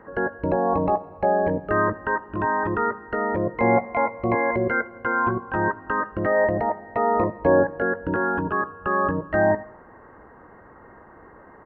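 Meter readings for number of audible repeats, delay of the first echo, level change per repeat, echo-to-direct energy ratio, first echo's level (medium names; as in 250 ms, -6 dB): 2, 82 ms, -6.0 dB, -22.0 dB, -23.0 dB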